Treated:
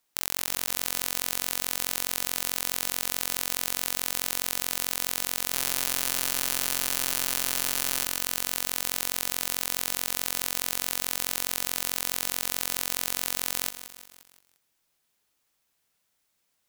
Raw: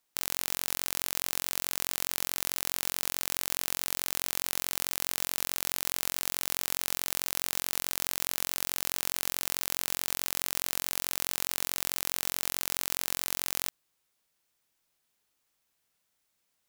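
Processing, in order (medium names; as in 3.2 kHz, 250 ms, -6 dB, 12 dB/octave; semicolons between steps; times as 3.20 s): 5.52–8.05 s: comb 7.4 ms, depth 84%; bit-crushed delay 175 ms, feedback 55%, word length 6-bit, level -12 dB; trim +2.5 dB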